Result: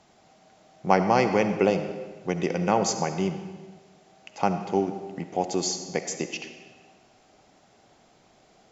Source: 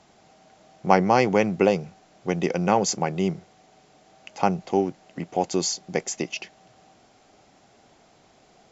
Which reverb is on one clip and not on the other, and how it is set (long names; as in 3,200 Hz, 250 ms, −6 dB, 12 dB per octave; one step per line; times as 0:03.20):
comb and all-pass reverb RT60 1.4 s, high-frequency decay 0.85×, pre-delay 25 ms, DRR 8 dB
level −2.5 dB